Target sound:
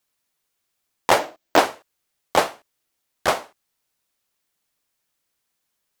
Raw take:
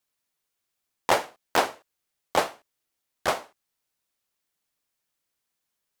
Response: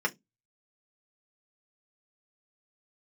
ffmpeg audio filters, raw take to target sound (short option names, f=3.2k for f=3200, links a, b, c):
-filter_complex "[0:a]asettb=1/sr,asplit=3[a][b][c];[a]atrim=end=1.194[d];[b]atrim=start=1.19:end=1.59,asetpts=PTS-STARTPTS,afade=t=in:d=0.004:c=qsin,afade=t=out:st=0.396:d=0.004:c=qsin,equalizer=f=315:t=o:w=0.33:g=11,equalizer=f=630:t=o:w=0.33:g=8,equalizer=f=10k:t=o:w=0.33:g=-11[e];[c]atrim=start=1.586[f];[d][e]acrossfade=d=0.004:c1=hsin:c2=qsin[g];[g][f]acrossfade=d=0.004:c1=qsin:c2=hsin,volume=5dB"